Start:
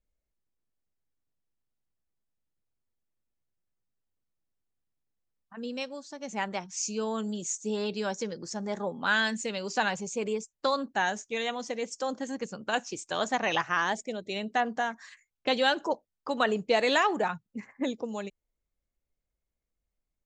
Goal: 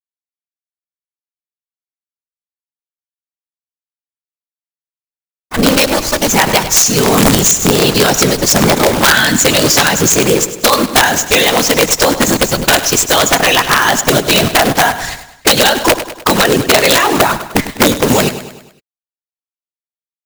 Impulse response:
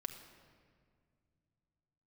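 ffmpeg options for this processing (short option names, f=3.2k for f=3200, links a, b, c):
-af "lowpass=7.3k,aemphasis=mode=production:type=50fm,acrusher=bits=7:dc=4:mix=0:aa=0.000001,acompressor=threshold=-32dB:ratio=10,afftfilt=real='hypot(re,im)*cos(2*PI*random(0))':imag='hypot(re,im)*sin(2*PI*random(1))':win_size=512:overlap=0.75,aeval=exprs='(mod(44.7*val(0)+1,2)-1)/44.7':c=same,acrusher=bits=3:mode=log:mix=0:aa=0.000001,aecho=1:1:101|202|303|404|505:0.188|0.0942|0.0471|0.0235|0.0118,alimiter=level_in=35.5dB:limit=-1dB:release=50:level=0:latency=1,volume=-1dB"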